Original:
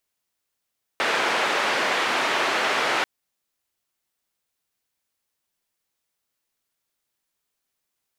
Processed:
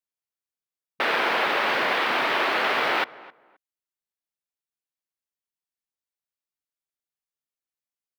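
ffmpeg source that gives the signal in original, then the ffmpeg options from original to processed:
-f lavfi -i "anoisesrc=c=white:d=2.04:r=44100:seed=1,highpass=f=380,lowpass=f=2100,volume=-7.6dB"
-filter_complex "[0:a]afwtdn=0.0224,acrossover=split=5200[a][b];[b]aeval=exprs='(mod(200*val(0)+1,2)-1)/200':c=same[c];[a][c]amix=inputs=2:normalize=0,asplit=2[d][e];[e]adelay=263,lowpass=f=1.6k:p=1,volume=-19dB,asplit=2[f][g];[g]adelay=263,lowpass=f=1.6k:p=1,volume=0.23[h];[d][f][h]amix=inputs=3:normalize=0"

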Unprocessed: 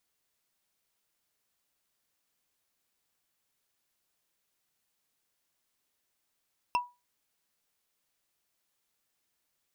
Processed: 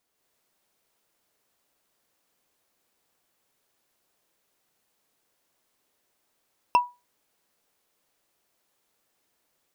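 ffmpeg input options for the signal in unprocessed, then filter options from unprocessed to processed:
-f lavfi -i "aevalsrc='0.0891*pow(10,-3*t/0.25)*sin(2*PI*976*t)+0.0473*pow(10,-3*t/0.074)*sin(2*PI*2690.8*t)+0.0251*pow(10,-3*t/0.033)*sin(2*PI*5274.3*t)+0.0133*pow(10,-3*t/0.018)*sin(2*PI*8718.6*t)+0.00708*pow(10,-3*t/0.011)*sin(2*PI*13019.8*t)':d=0.45:s=44100"
-af "equalizer=f=490:w=0.46:g=7.5,dynaudnorm=f=120:g=3:m=4.5dB"

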